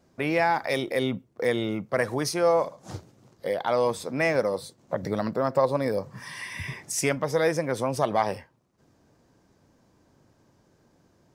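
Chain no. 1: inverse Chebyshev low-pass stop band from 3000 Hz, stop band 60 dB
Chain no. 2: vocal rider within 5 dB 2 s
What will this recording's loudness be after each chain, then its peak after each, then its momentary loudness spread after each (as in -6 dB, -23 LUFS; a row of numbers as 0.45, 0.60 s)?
-27.5, -26.5 LUFS; -11.0, -7.5 dBFS; 16, 11 LU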